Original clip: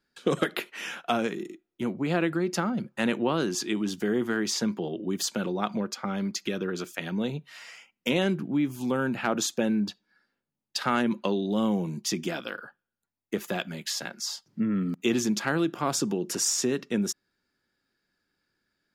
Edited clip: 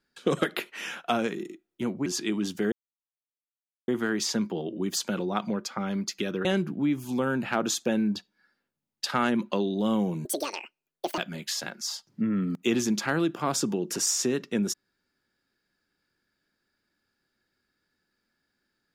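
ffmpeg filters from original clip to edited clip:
-filter_complex "[0:a]asplit=6[a][b][c][d][e][f];[a]atrim=end=2.062[g];[b]atrim=start=3.488:end=4.15,asetpts=PTS-STARTPTS,afade=t=out:st=0.658:d=0.004:c=hsin,apad=pad_dur=1.16[h];[c]atrim=start=4.15:end=6.722,asetpts=PTS-STARTPTS,afade=t=in:d=0.004:c=hsin[i];[d]atrim=start=8.168:end=11.974[j];[e]atrim=start=11.97:end=13.57,asetpts=PTS-STARTPTS,asetrate=75852,aresample=44100,atrim=end_sample=41023,asetpts=PTS-STARTPTS[k];[f]atrim=start=13.566[l];[h][i]concat=n=2:v=0:a=1[m];[g][m]acrossfade=d=0.004:c1=hsin:c2=hsin[n];[n][j]acrossfade=d=0.004:c1=hsin:c2=hsin[o];[o][k]acrossfade=d=0.004:c1=hsin:c2=hsin[p];[p][l]acrossfade=d=0.004:c1=hsin:c2=hsin"

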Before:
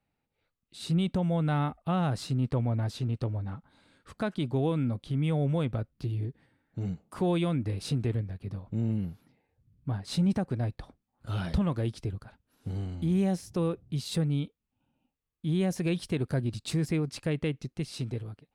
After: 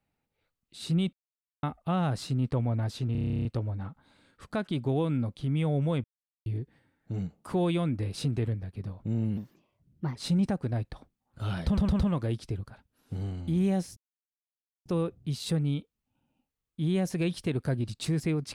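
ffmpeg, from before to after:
-filter_complex "[0:a]asplit=22[a][b][c][d][e][f][g][h][i][j][k][l][m][n][o][p][q][r][s][t][u][v];[a]atrim=end=1.13,asetpts=PTS-STARTPTS,afade=t=out:st=1.126:d=0.004:c=hsin[w];[b]atrim=start=1.13:end=1.63,asetpts=PTS-STARTPTS,volume=0[x];[c]atrim=start=1.63:end=3.152,asetpts=PTS-STARTPTS,afade=t=in:d=0.004:c=hsin[y];[d]atrim=start=3.118:end=3.152[z];[e]atrim=start=3.118:end=3.152[aa];[f]atrim=start=3.118:end=3.152[ab];[g]atrim=start=3.118:end=3.152[ac];[h]atrim=start=3.118:end=3.152[ad];[i]atrim=start=3.118:end=3.152[ae];[j]atrim=start=3.118:end=3.152[af];[k]atrim=start=3.118:end=3.152[ag];[l]atrim=start=3.118:end=3.152[ah];[m]atrim=start=3.118:end=3.152[ai];[n]atrim=start=3.118:end=5.71,asetpts=PTS-STARTPTS,afade=t=out:st=2.588:d=0.004:c=hsin[aj];[o]atrim=start=5.71:end=6.13,asetpts=PTS-STARTPTS,volume=0[ak];[p]atrim=start=6.13:end=9.044,asetpts=PTS-STARTPTS,afade=t=in:d=0.004:c=hsin[al];[q]atrim=start=9.04:end=10.03,asetpts=PTS-STARTPTS,asetrate=55566,aresample=44100[am];[r]atrim=start=10.026:end=11.652[an];[s]atrim=start=11.538:end=11.652[ao];[t]atrim=start=11.538:end=11.652[ap];[u]atrim=start=11.538:end=13.51,asetpts=PTS-STARTPTS,afade=t=out:st=1.968:d=0.004:c=hsin,apad=pad_dur=0.89[aq];[v]atrim=start=13.51,asetpts=PTS-STARTPTS,afade=t=in:d=0.004:c=hsin[ar];[w][x][y]concat=n=3:v=0:a=1[as];[as][z]acrossfade=d=0.004:c1=hsin:c2=hsin[at];[at][aa]acrossfade=d=0.004:c1=hsin:c2=hsin[au];[au][ab]acrossfade=d=0.004:c1=hsin:c2=hsin[av];[av][ac]acrossfade=d=0.004:c1=hsin:c2=hsin[aw];[aw][ad]acrossfade=d=0.004:c1=hsin:c2=hsin[ax];[ax][ae]acrossfade=d=0.004:c1=hsin:c2=hsin[ay];[ay][af]acrossfade=d=0.004:c1=hsin:c2=hsin[az];[az][ag]acrossfade=d=0.004:c1=hsin:c2=hsin[ba];[ba][ah]acrossfade=d=0.004:c1=hsin:c2=hsin[bb];[bb][ai]acrossfade=d=0.004:c1=hsin:c2=hsin[bc];[aj][ak][al]concat=n=3:v=0:a=1[bd];[bc][bd]acrossfade=d=0.004:c1=hsin:c2=hsin[be];[be][am]acrossfade=d=0.004:c1=hsin:c2=hsin[bf];[bf][an]acrossfade=d=0.004:c1=hsin:c2=hsin[bg];[bg][ao]acrossfade=d=0.004:c1=hsin:c2=hsin[bh];[bh][ap]acrossfade=d=0.004:c1=hsin:c2=hsin[bi];[aq][ar]concat=n=2:v=0:a=1[bj];[bi][bj]acrossfade=d=0.004:c1=hsin:c2=hsin"

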